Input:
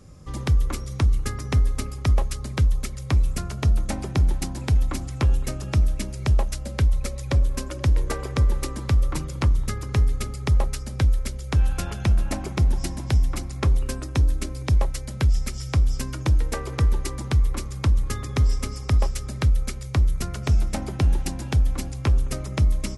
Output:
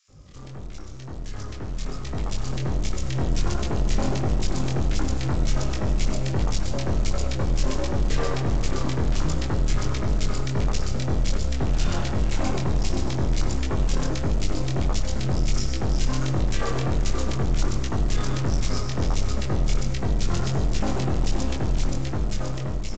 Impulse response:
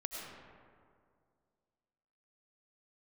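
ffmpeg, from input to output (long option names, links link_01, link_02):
-filter_complex "[0:a]adynamicequalizer=threshold=0.0158:dfrequency=200:dqfactor=1.8:tfrequency=200:tqfactor=1.8:attack=5:release=100:ratio=0.375:range=1.5:mode=cutabove:tftype=bell,aeval=exprs='(tanh(70.8*val(0)+0.45)-tanh(0.45))/70.8':channel_layout=same,dynaudnorm=framelen=820:gausssize=5:maxgain=15dB,flanger=delay=19:depth=4.8:speed=1.4,acontrast=20,aresample=16000,acrusher=bits=5:mode=log:mix=0:aa=0.000001,aresample=44100,acrossover=split=1800[link_01][link_02];[link_01]adelay=80[link_03];[link_03][link_02]amix=inputs=2:normalize=0,asplit=2[link_04][link_05];[1:a]atrim=start_sample=2205,afade=type=out:start_time=0.23:duration=0.01,atrim=end_sample=10584[link_06];[link_05][link_06]afir=irnorm=-1:irlink=0,volume=-1dB[link_07];[link_04][link_07]amix=inputs=2:normalize=0,volume=-6.5dB"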